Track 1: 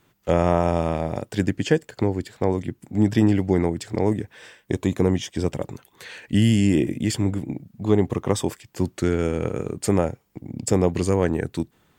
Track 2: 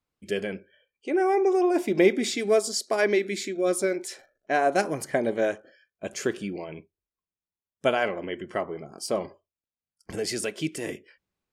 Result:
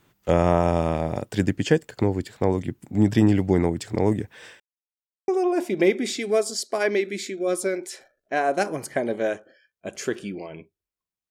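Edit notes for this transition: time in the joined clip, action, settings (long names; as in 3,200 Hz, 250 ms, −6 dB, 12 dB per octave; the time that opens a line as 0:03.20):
track 1
0:04.60–0:05.28: silence
0:05.28: continue with track 2 from 0:01.46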